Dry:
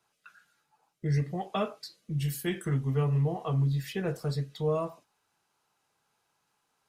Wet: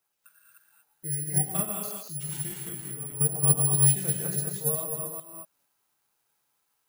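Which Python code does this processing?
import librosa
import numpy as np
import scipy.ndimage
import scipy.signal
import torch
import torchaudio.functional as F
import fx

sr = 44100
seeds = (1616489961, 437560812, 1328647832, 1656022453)

y = fx.reverse_delay(x, sr, ms=208, wet_db=-1.5)
y = fx.level_steps(y, sr, step_db=11, at=(2.43, 3.35))
y = fx.low_shelf(y, sr, hz=490.0, db=-3.5)
y = fx.rev_gated(y, sr, seeds[0], gate_ms=260, shape='rising', drr_db=1.0)
y = (np.kron(y[::4], np.eye(4)[0]) * 4)[:len(y)]
y = fx.dynamic_eq(y, sr, hz=180.0, q=3.2, threshold_db=-44.0, ratio=4.0, max_db=7)
y = fx.upward_expand(y, sr, threshold_db=-22.0, expansion=2.5)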